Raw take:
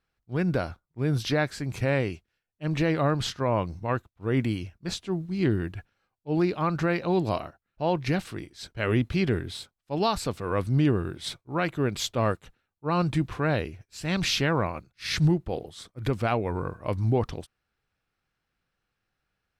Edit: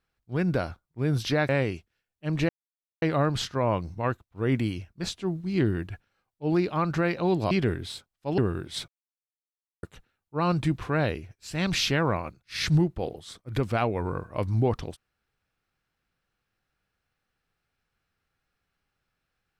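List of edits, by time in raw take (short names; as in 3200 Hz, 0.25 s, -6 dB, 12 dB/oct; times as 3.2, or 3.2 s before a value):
1.49–1.87 cut
2.87 insert silence 0.53 s
7.36–9.16 cut
10.03–10.88 cut
11.38–12.33 mute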